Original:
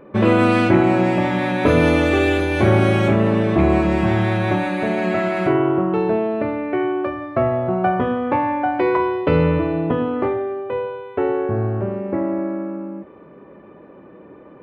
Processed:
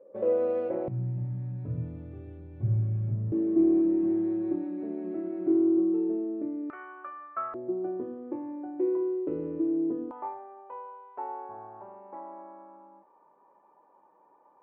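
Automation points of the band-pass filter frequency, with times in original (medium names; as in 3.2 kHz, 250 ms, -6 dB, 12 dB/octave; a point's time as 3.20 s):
band-pass filter, Q 12
520 Hz
from 0.88 s 120 Hz
from 3.32 s 320 Hz
from 6.70 s 1.3 kHz
from 7.54 s 340 Hz
from 10.11 s 900 Hz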